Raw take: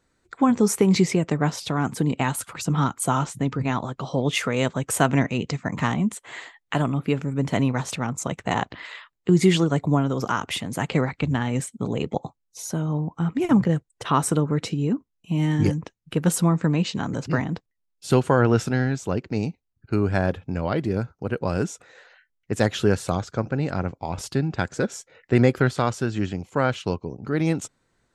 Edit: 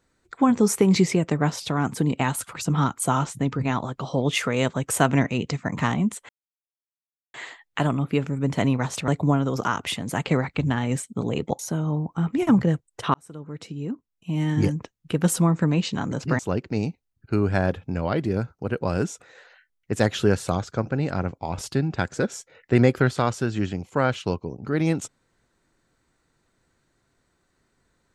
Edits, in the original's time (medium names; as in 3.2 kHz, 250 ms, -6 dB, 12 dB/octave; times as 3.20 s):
6.29 s: insert silence 1.05 s
8.03–9.72 s: delete
12.23–12.61 s: delete
14.16–15.80 s: fade in
17.41–18.99 s: delete